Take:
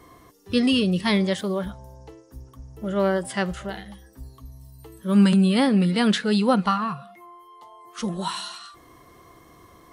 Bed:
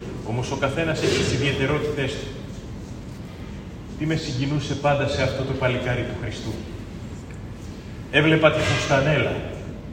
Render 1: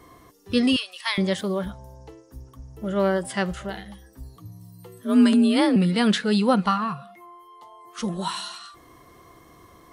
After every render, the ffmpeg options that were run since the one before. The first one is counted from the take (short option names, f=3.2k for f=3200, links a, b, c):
-filter_complex "[0:a]asettb=1/sr,asplit=3[a][b][c];[a]atrim=end=0.764[d];[b]atrim=start=0.76:end=1.18,asetpts=PTS-STARTPTS,afade=t=in:d=0.004:c=qsin,afade=t=out:st=0.416:d=0.004:c=qsin,highpass=f=920:w=0.5412,highpass=f=920:w=1.3066[e];[c]atrim=start=1.176[f];[d][e]acrossfade=d=0.004:c1=hsin:c2=qsin[g];[g][f]acrossfade=d=0.004:c1=qsin:c2=hsin,asettb=1/sr,asplit=3[h][i][j];[h]atrim=end=4.364[k];[i]atrim=start=4.36:end=5.76,asetpts=PTS-STARTPTS,afade=t=in:d=0.004:c=qsin,afade=t=out:st=1.396:d=0.004:c=qsin,afreqshift=44[l];[j]atrim=start=5.756[m];[k][l]acrossfade=d=0.004:c1=hsin:c2=qsin[n];[n][m]acrossfade=d=0.004:c1=qsin:c2=hsin"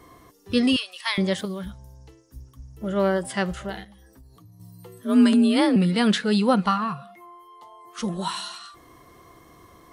-filter_complex "[0:a]asettb=1/sr,asplit=3[a][b][c];[a]atrim=end=1.454[d];[b]atrim=start=1.45:end=2.81,asetpts=PTS-STARTPTS,afade=t=in:d=0.004:c=qsin,afade=t=out:st=1.356:d=0.004:c=qsin,equalizer=f=640:t=o:w=2.4:g=-11[e];[c]atrim=start=2.806[f];[d][e]acrossfade=d=0.004:c1=hsin:c2=qsin[g];[g][f]acrossfade=d=0.004:c1=qsin:c2=hsin,asettb=1/sr,asplit=3[h][i][j];[h]atrim=end=3.844[k];[i]atrim=start=3.84:end=4.6,asetpts=PTS-STARTPTS,afade=t=in:d=0.004:c=qsin,afade=t=out:st=0.756:d=0.004:c=qsin,acompressor=threshold=-48dB:ratio=4:attack=3.2:release=140:knee=1:detection=peak[l];[j]atrim=start=4.596[m];[k][l]acrossfade=d=0.004:c1=hsin:c2=qsin[n];[n][m]acrossfade=d=0.004:c1=qsin:c2=hsin"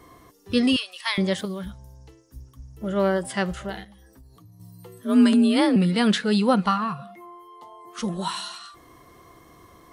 -filter_complex "[0:a]asettb=1/sr,asplit=3[a][b][c];[a]atrim=end=6.994[d];[b]atrim=start=6.99:end=8,asetpts=PTS-STARTPTS,afade=t=in:d=0.004:c=qsin,afade=t=out:st=1.006:d=0.004:c=qsin,equalizer=f=250:t=o:w=2.5:g=6.5[e];[c]atrim=start=7.996[f];[d][e]acrossfade=d=0.004:c1=hsin:c2=qsin[g];[g][f]acrossfade=d=0.004:c1=qsin:c2=hsin"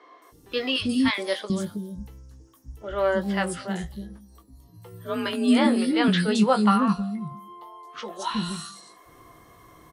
-filter_complex "[0:a]asplit=2[a][b];[b]adelay=19,volume=-8dB[c];[a][c]amix=inputs=2:normalize=0,acrossover=split=350|4700[d][e][f];[f]adelay=220[g];[d]adelay=320[h];[h][e][g]amix=inputs=3:normalize=0"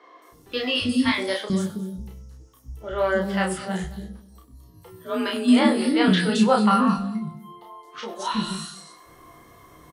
-filter_complex "[0:a]asplit=2[a][b];[b]adelay=32,volume=-2.5dB[c];[a][c]amix=inputs=2:normalize=0,aecho=1:1:96|224:0.133|0.119"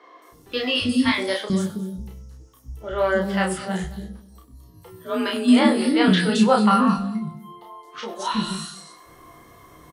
-af "volume=1.5dB"